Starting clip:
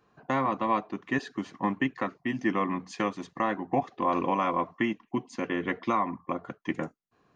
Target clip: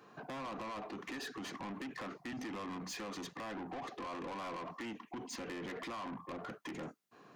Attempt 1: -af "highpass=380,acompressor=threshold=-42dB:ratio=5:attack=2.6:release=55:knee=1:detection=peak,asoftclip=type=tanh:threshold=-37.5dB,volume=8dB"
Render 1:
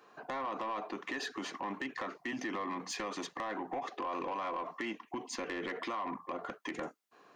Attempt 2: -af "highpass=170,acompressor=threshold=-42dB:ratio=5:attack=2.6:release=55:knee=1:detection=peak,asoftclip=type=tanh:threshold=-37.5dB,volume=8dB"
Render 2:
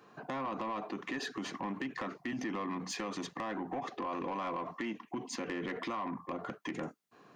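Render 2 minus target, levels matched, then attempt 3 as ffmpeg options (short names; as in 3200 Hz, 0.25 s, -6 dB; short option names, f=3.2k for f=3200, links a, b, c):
soft clip: distortion -10 dB
-af "highpass=170,acompressor=threshold=-42dB:ratio=5:attack=2.6:release=55:knee=1:detection=peak,asoftclip=type=tanh:threshold=-48dB,volume=8dB"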